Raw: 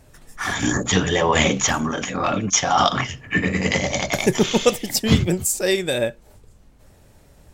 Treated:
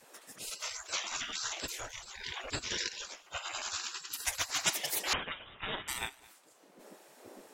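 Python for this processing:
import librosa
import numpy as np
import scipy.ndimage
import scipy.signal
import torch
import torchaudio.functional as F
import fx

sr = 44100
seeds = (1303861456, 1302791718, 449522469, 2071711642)

y = fx.dmg_wind(x, sr, seeds[0], corner_hz=80.0, level_db=-33.0)
y = fx.hum_notches(y, sr, base_hz=60, count=7)
y = fx.spec_gate(y, sr, threshold_db=-25, keep='weak')
y = fx.low_shelf(y, sr, hz=360.0, db=10.5, at=(1.62, 2.69))
y = y + 10.0 ** (-23.0 / 20.0) * np.pad(y, (int(214 * sr / 1000.0), 0))[:len(y)]
y = fx.freq_invert(y, sr, carrier_hz=3700, at=(5.13, 5.88))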